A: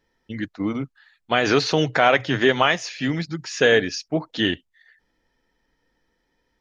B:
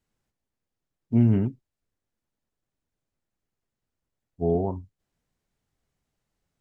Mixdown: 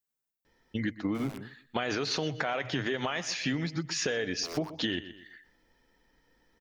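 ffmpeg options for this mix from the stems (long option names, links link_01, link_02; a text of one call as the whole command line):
ffmpeg -i stem1.wav -i stem2.wav -filter_complex "[0:a]alimiter=limit=-13.5dB:level=0:latency=1:release=89,adelay=450,volume=2dB,asplit=2[link_01][link_02];[link_02]volume=-18dB[link_03];[1:a]aemphasis=mode=production:type=bsi,aeval=exprs='(mod(11.2*val(0)+1,2)-1)/11.2':channel_layout=same,volume=-13.5dB[link_04];[link_03]aecho=0:1:123|246|369|492:1|0.26|0.0676|0.0176[link_05];[link_01][link_04][link_05]amix=inputs=3:normalize=0,acompressor=threshold=-28dB:ratio=6" out.wav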